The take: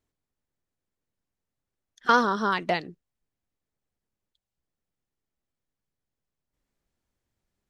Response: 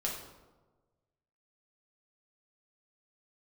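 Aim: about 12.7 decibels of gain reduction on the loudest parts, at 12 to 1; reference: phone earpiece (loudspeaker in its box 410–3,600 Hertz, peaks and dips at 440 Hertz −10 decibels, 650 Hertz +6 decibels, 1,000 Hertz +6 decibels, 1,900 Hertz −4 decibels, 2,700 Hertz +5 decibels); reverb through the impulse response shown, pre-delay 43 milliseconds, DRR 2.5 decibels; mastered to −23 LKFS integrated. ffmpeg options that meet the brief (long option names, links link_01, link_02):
-filter_complex "[0:a]acompressor=threshold=-27dB:ratio=12,asplit=2[link_01][link_02];[1:a]atrim=start_sample=2205,adelay=43[link_03];[link_02][link_03]afir=irnorm=-1:irlink=0,volume=-6dB[link_04];[link_01][link_04]amix=inputs=2:normalize=0,highpass=410,equalizer=frequency=440:width_type=q:width=4:gain=-10,equalizer=frequency=650:width_type=q:width=4:gain=6,equalizer=frequency=1000:width_type=q:width=4:gain=6,equalizer=frequency=1900:width_type=q:width=4:gain=-4,equalizer=frequency=2700:width_type=q:width=4:gain=5,lowpass=frequency=3600:width=0.5412,lowpass=frequency=3600:width=1.3066,volume=7.5dB"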